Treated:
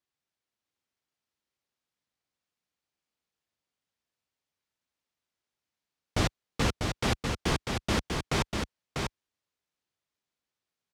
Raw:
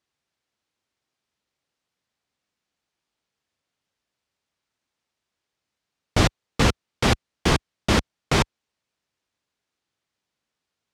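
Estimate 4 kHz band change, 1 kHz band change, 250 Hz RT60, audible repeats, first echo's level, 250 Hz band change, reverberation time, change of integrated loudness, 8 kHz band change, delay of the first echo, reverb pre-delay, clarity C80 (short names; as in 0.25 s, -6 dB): -7.0 dB, -7.0 dB, none, 1, -4.5 dB, -7.0 dB, none, -8.0 dB, -6.0 dB, 0.645 s, none, none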